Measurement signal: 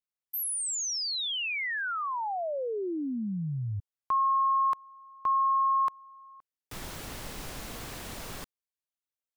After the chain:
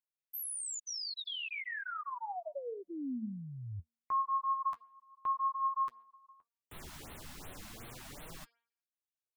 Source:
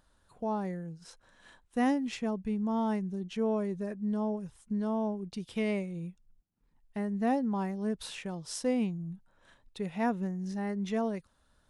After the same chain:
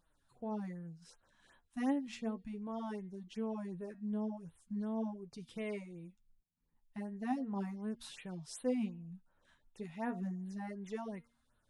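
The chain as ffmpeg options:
-af "bandreject=f=233.4:t=h:w=4,bandreject=f=466.8:t=h:w=4,bandreject=f=700.2:t=h:w=4,bandreject=f=933.6:t=h:w=4,bandreject=f=1.167k:t=h:w=4,bandreject=f=1.4004k:t=h:w=4,bandreject=f=1.6338k:t=h:w=4,bandreject=f=1.8672k:t=h:w=4,bandreject=f=2.1006k:t=h:w=4,bandreject=f=2.334k:t=h:w=4,bandreject=f=2.5674k:t=h:w=4,bandreject=f=2.8008k:t=h:w=4,bandreject=f=3.0342k:t=h:w=4,bandreject=f=3.2676k:t=h:w=4,bandreject=f=3.501k:t=h:w=4,bandreject=f=3.7344k:t=h:w=4,bandreject=f=3.9678k:t=h:w=4,bandreject=f=4.2012k:t=h:w=4,bandreject=f=4.4346k:t=h:w=4,bandreject=f=4.668k:t=h:w=4,bandreject=f=4.9014k:t=h:w=4,bandreject=f=5.1348k:t=h:w=4,flanger=delay=5.9:depth=8.1:regen=33:speed=0.36:shape=triangular,afftfilt=real='re*(1-between(b*sr/1024,390*pow(6300/390,0.5+0.5*sin(2*PI*2.7*pts/sr))/1.41,390*pow(6300/390,0.5+0.5*sin(2*PI*2.7*pts/sr))*1.41))':imag='im*(1-between(b*sr/1024,390*pow(6300/390,0.5+0.5*sin(2*PI*2.7*pts/sr))/1.41,390*pow(6300/390,0.5+0.5*sin(2*PI*2.7*pts/sr))*1.41))':win_size=1024:overlap=0.75,volume=-4dB"

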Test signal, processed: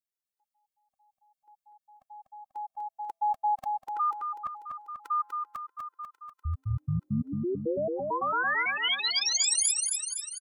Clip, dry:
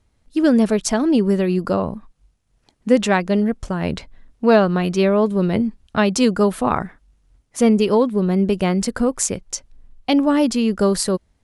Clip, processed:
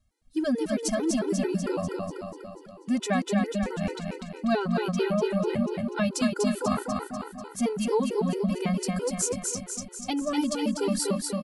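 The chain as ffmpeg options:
-filter_complex "[0:a]highshelf=f=5.1k:g=6.5,asplit=2[a][b];[b]aecho=0:1:245|490|735|980|1225|1470|1715|1960:0.668|0.381|0.217|0.124|0.0706|0.0402|0.0229|0.0131[c];[a][c]amix=inputs=2:normalize=0,afftfilt=real='re*gt(sin(2*PI*4.5*pts/sr)*(1-2*mod(floor(b*sr/1024/260),2)),0)':imag='im*gt(sin(2*PI*4.5*pts/sr)*(1-2*mod(floor(b*sr/1024/260),2)),0)':win_size=1024:overlap=0.75,volume=-8dB"

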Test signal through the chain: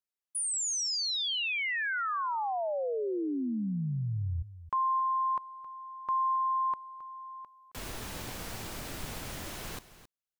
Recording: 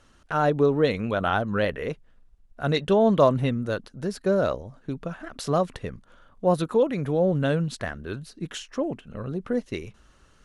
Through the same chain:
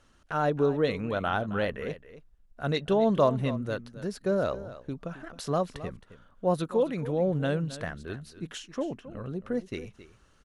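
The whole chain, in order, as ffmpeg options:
-af "aecho=1:1:268:0.178,volume=-4.5dB"

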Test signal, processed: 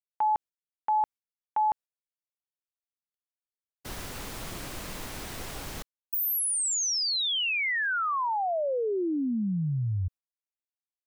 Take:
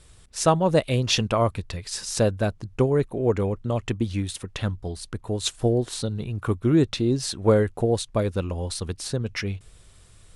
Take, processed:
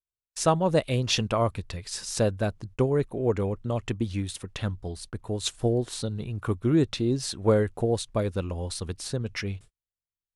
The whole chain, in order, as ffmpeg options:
-af "agate=range=-48dB:threshold=-40dB:ratio=16:detection=peak,volume=-3dB"

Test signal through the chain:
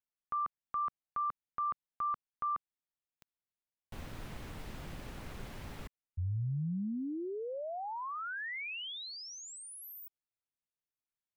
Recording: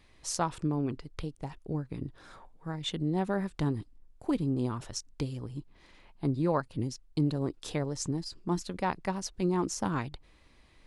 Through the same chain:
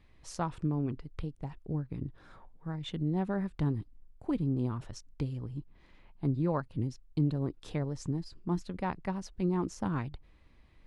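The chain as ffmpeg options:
-af "bass=f=250:g=6,treble=f=4k:g=-9,volume=-4.5dB"

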